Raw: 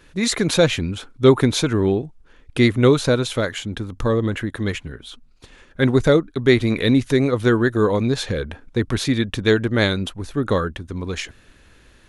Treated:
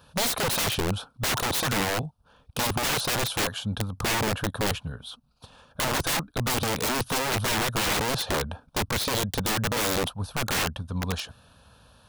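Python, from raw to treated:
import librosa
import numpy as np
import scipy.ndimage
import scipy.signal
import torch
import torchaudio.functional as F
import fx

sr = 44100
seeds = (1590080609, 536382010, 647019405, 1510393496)

y = scipy.signal.sosfilt(scipy.signal.butter(2, 90.0, 'highpass', fs=sr, output='sos'), x)
y = fx.peak_eq(y, sr, hz=7000.0, db=-12.0, octaves=0.54)
y = fx.fixed_phaser(y, sr, hz=840.0, stages=4)
y = (np.mod(10.0 ** (24.0 / 20.0) * y + 1.0, 2.0) - 1.0) / 10.0 ** (24.0 / 20.0)
y = F.gain(torch.from_numpy(y), 3.5).numpy()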